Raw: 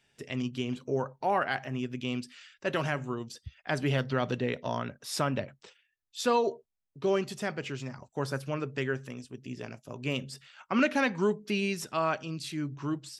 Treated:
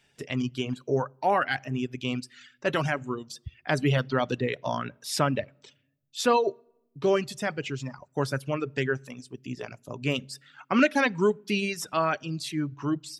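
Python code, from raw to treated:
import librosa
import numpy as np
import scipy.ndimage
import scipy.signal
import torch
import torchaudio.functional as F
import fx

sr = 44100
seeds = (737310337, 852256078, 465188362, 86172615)

y = fx.room_shoebox(x, sr, seeds[0], volume_m3=3900.0, walls='furnished', distance_m=0.36)
y = fx.dereverb_blind(y, sr, rt60_s=1.1)
y = F.gain(torch.from_numpy(y), 4.5).numpy()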